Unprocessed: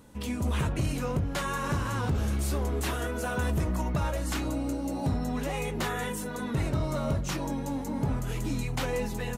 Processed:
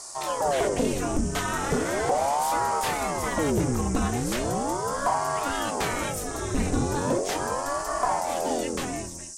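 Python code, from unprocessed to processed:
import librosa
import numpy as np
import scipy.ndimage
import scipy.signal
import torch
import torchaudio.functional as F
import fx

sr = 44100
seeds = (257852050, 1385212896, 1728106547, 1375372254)

y = fx.fade_out_tail(x, sr, length_s=0.83)
y = fx.dmg_noise_band(y, sr, seeds[0], low_hz=5400.0, high_hz=9200.0, level_db=-44.0)
y = fx.ring_lfo(y, sr, carrier_hz=510.0, swing_pct=75, hz=0.38)
y = y * librosa.db_to_amplitude(6.0)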